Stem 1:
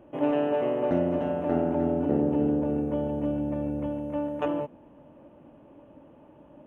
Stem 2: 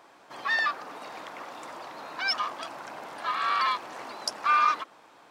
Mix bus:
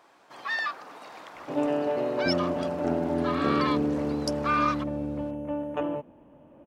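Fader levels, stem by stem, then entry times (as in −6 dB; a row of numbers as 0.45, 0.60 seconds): −1.5, −3.5 decibels; 1.35, 0.00 seconds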